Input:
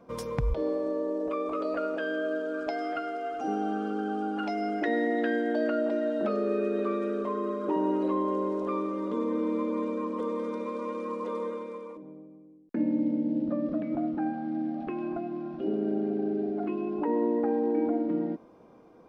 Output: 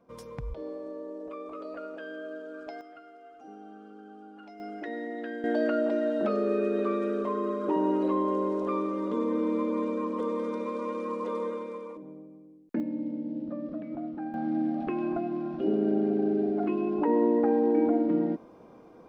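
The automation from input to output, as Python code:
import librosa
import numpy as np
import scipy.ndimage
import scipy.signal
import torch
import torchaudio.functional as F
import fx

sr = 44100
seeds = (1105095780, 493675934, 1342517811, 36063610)

y = fx.gain(x, sr, db=fx.steps((0.0, -9.0), (2.81, -17.0), (4.6, -9.0), (5.44, 1.0), (12.8, -6.0), (14.34, 3.0)))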